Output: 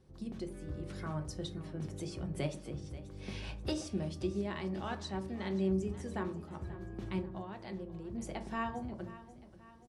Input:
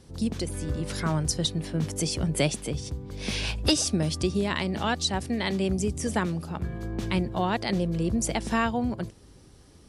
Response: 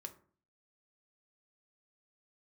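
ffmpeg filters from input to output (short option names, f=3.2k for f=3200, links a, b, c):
-filter_complex "[0:a]highshelf=f=3.4k:g=-11.5,asettb=1/sr,asplit=3[a][b][c];[a]atrim=end=7.214[d];[b]atrim=start=7.21:end=8.15,asetpts=PTS-STARTPTS,afade=t=in:d=0.004:c=qsin,afade=t=out:st=0.936:d=0.004:c=qsin,acompressor=threshold=-30dB:ratio=5[e];[c]atrim=start=8.146[f];[d][e]acrossfade=d=0.004:c1=hsin:c2=qsin[g];[g][f]acrossfade=d=0.004:c1=qsin:c2=hsin,aecho=1:1:534|1068|1602|2136:0.158|0.0777|0.0381|0.0186[h];[1:a]atrim=start_sample=2205[i];[h][i]afir=irnorm=-1:irlink=0,volume=-6.5dB"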